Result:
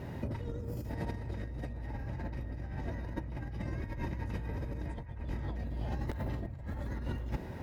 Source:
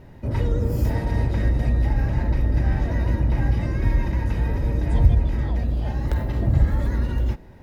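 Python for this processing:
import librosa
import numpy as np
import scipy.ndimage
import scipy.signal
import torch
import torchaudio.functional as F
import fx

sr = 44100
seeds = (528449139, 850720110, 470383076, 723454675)

p1 = scipy.signal.sosfilt(scipy.signal.butter(2, 61.0, 'highpass', fs=sr, output='sos'), x)
p2 = fx.over_compress(p1, sr, threshold_db=-33.0, ratio=-1.0)
p3 = p2 + fx.echo_wet_bandpass(p2, sr, ms=870, feedback_pct=51, hz=1200.0, wet_db=-10.0, dry=0)
y = p3 * librosa.db_to_amplitude(-5.0)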